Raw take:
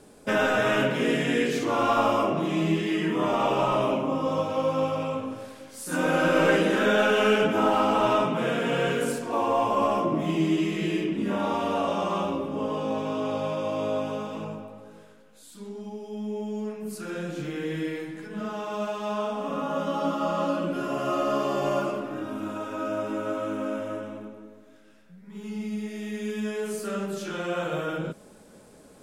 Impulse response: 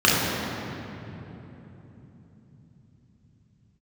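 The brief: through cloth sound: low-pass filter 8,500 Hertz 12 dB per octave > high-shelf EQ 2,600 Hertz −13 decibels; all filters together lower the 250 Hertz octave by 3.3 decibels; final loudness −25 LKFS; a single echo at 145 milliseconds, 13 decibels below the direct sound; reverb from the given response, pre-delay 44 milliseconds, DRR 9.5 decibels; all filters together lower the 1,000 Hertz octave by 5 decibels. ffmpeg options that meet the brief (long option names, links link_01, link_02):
-filter_complex "[0:a]equalizer=frequency=250:width_type=o:gain=-4,equalizer=frequency=1000:width_type=o:gain=-4,aecho=1:1:145:0.224,asplit=2[link_01][link_02];[1:a]atrim=start_sample=2205,adelay=44[link_03];[link_02][link_03]afir=irnorm=-1:irlink=0,volume=-32dB[link_04];[link_01][link_04]amix=inputs=2:normalize=0,lowpass=8500,highshelf=frequency=2600:gain=-13,volume=4dB"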